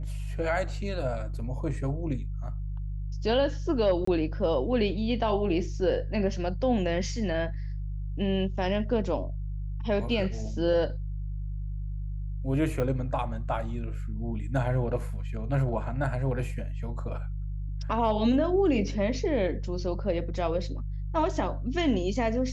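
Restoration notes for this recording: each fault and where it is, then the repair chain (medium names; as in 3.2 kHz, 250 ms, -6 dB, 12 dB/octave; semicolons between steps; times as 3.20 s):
hum 50 Hz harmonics 3 -33 dBFS
4.05–4.07 s: dropout 24 ms
12.80 s: pop -18 dBFS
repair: de-click; de-hum 50 Hz, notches 3; interpolate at 4.05 s, 24 ms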